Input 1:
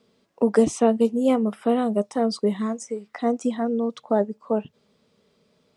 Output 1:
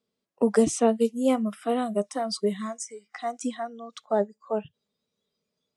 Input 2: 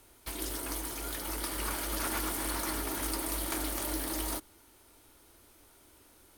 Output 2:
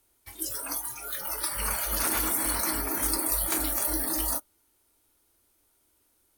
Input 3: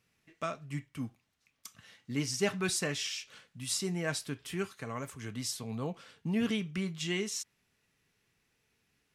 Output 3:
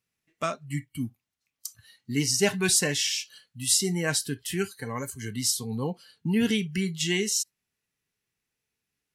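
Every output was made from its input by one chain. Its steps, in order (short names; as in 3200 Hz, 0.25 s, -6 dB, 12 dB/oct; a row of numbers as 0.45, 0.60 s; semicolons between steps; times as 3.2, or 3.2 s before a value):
spectral noise reduction 17 dB; high shelf 6000 Hz +8.5 dB; match loudness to -27 LUFS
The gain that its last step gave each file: -2.0, +3.5, +6.5 dB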